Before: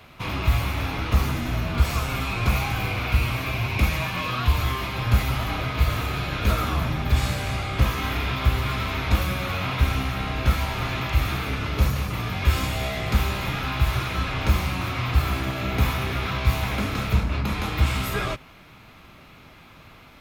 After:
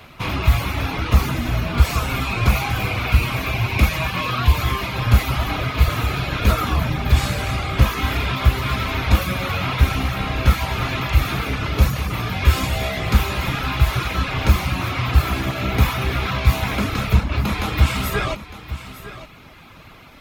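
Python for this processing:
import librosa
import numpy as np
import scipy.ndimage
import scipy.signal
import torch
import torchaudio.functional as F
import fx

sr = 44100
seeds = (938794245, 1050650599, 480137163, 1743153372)

y = fx.dereverb_blind(x, sr, rt60_s=0.59)
y = y + 10.0 ** (-14.0 / 20.0) * np.pad(y, (int(906 * sr / 1000.0), 0))[:len(y)]
y = y * 10.0 ** (5.5 / 20.0)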